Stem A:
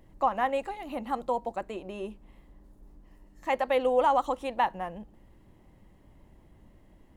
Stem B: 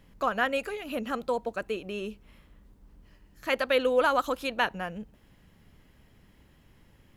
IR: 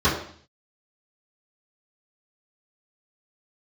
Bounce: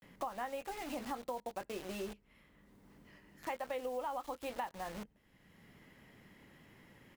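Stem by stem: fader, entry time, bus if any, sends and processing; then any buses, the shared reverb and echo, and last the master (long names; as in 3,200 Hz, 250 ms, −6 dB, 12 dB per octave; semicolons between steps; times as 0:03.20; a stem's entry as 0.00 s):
−4.0 dB, 0.00 s, no send, bit reduction 7 bits
−18.0 dB, 21 ms, no send, parametric band 2,000 Hz +7 dB 0.25 octaves; multiband upward and downward compressor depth 70%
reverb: not used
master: downward compressor 6 to 1, threshold −37 dBFS, peak gain reduction 13 dB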